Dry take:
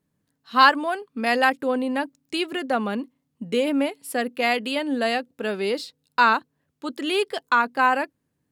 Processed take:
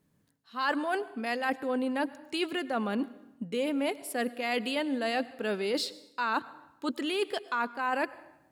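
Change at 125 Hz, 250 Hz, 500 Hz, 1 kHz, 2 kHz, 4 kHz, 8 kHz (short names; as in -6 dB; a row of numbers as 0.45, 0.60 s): -5.0, -5.5, -6.5, -11.0, -10.0, -7.5, -4.0 dB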